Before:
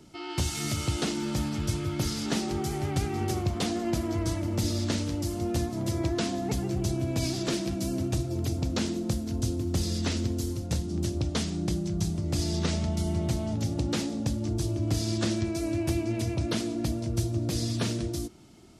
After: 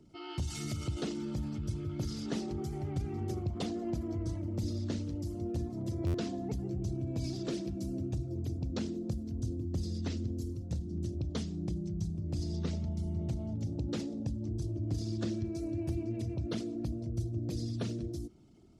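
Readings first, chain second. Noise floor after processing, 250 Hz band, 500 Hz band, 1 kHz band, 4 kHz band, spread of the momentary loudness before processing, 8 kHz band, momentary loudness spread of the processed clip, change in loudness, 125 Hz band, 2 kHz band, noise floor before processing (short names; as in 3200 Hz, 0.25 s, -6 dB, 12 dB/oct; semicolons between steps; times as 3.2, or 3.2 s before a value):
-42 dBFS, -6.5 dB, -7.5 dB, -12.0 dB, -13.0 dB, 2 LU, -15.0 dB, 2 LU, -7.0 dB, -5.5 dB, -13.5 dB, -36 dBFS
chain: formant sharpening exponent 1.5; stuck buffer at 6.06, samples 512, times 6; gain -6.5 dB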